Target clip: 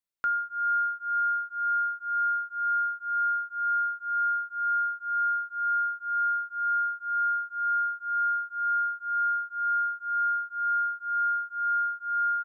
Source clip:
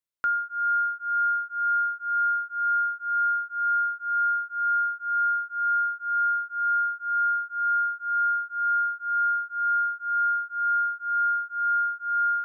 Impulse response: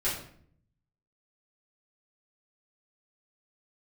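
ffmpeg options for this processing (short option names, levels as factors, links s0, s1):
-filter_complex "[0:a]asplit=2[s0][s1];[s1]adelay=957,lowpass=f=1400:p=1,volume=0.126,asplit=2[s2][s3];[s3]adelay=957,lowpass=f=1400:p=1,volume=0.22[s4];[s0][s2][s4]amix=inputs=3:normalize=0,asplit=2[s5][s6];[1:a]atrim=start_sample=2205,asetrate=61740,aresample=44100[s7];[s6][s7]afir=irnorm=-1:irlink=0,volume=0.119[s8];[s5][s8]amix=inputs=2:normalize=0,volume=0.75"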